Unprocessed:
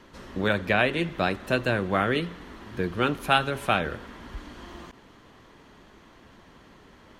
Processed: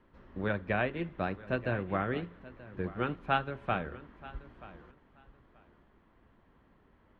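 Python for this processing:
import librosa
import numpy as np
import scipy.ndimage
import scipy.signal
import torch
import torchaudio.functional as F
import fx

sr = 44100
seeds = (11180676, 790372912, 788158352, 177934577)

p1 = scipy.signal.sosfilt(scipy.signal.butter(2, 2100.0, 'lowpass', fs=sr, output='sos'), x)
p2 = fx.low_shelf(p1, sr, hz=110.0, db=7.0)
p3 = p2 + fx.echo_feedback(p2, sr, ms=931, feedback_pct=20, wet_db=-13.0, dry=0)
p4 = fx.upward_expand(p3, sr, threshold_db=-34.0, expansion=1.5)
y = F.gain(torch.from_numpy(p4), -6.0).numpy()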